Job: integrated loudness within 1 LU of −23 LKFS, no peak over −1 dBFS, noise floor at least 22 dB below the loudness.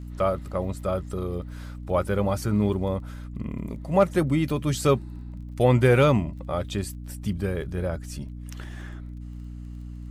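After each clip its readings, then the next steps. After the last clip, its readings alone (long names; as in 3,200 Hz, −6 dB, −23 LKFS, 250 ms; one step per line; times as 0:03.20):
crackle rate 21 per second; mains hum 60 Hz; hum harmonics up to 300 Hz; level of the hum −35 dBFS; integrated loudness −25.5 LKFS; sample peak −7.5 dBFS; target loudness −23.0 LKFS
→ click removal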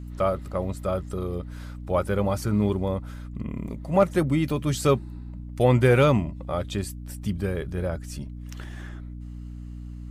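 crackle rate 0.099 per second; mains hum 60 Hz; hum harmonics up to 300 Hz; level of the hum −35 dBFS
→ hum removal 60 Hz, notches 5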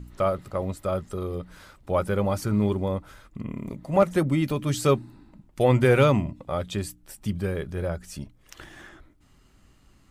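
mains hum none found; integrated loudness −25.5 LKFS; sample peak −7.5 dBFS; target loudness −23.0 LKFS
→ level +2.5 dB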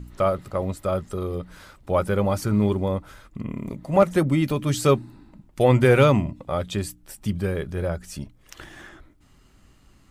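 integrated loudness −23.5 LKFS; sample peak −5.0 dBFS; background noise floor −56 dBFS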